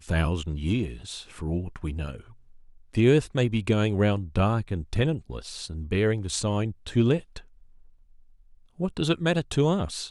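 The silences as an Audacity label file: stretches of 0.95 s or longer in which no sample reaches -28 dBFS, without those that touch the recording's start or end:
7.370000	8.800000	silence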